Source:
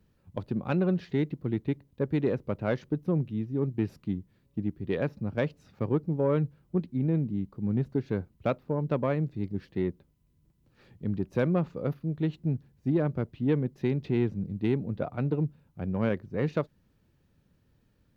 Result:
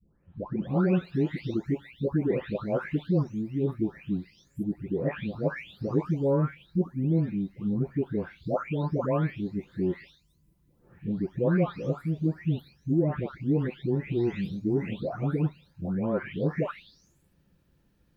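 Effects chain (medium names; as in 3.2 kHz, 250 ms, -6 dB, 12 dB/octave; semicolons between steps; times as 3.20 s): delay that grows with frequency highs late, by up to 674 ms; trim +2.5 dB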